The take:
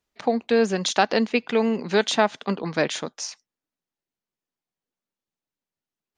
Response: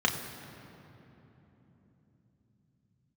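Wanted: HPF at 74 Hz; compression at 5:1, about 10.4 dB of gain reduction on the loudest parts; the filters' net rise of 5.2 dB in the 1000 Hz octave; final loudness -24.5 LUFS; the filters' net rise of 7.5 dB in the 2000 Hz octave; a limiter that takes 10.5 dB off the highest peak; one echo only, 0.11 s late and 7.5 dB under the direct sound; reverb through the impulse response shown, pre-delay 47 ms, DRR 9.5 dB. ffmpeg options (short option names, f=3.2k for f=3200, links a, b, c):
-filter_complex "[0:a]highpass=74,equalizer=f=1k:t=o:g=5.5,equalizer=f=2k:t=o:g=8,acompressor=threshold=-20dB:ratio=5,alimiter=limit=-15dB:level=0:latency=1,aecho=1:1:110:0.422,asplit=2[a][b];[1:a]atrim=start_sample=2205,adelay=47[c];[b][c]afir=irnorm=-1:irlink=0,volume=-21dB[d];[a][d]amix=inputs=2:normalize=0,volume=3.5dB"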